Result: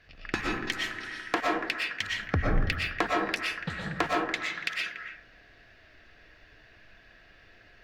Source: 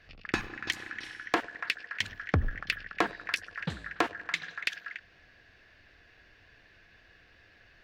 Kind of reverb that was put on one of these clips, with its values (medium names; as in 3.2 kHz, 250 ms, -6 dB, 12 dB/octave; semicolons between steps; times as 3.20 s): algorithmic reverb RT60 0.8 s, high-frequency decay 0.3×, pre-delay 80 ms, DRR -2.5 dB; trim -1 dB